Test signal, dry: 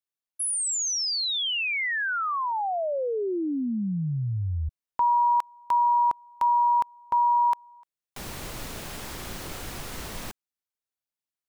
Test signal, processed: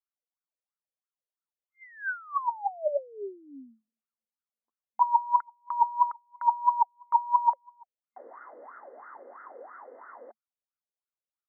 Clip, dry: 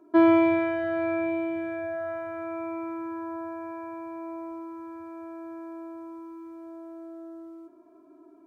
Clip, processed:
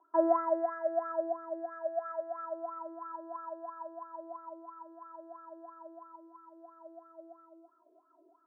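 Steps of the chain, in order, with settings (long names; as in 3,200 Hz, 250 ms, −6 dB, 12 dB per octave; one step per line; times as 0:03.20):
brick-wall band-pass 220–2,100 Hz
LFO wah 3 Hz 480–1,400 Hz, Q 11
level +7 dB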